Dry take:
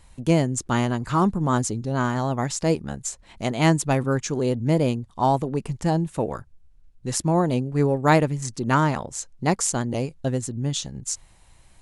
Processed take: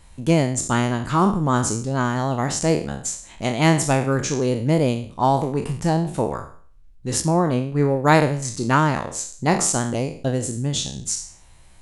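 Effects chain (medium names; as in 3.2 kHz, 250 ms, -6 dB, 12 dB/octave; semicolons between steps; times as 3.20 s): spectral sustain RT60 0.48 s; 7.21–8.05 s: treble shelf 3.8 kHz -8 dB; trim +1.5 dB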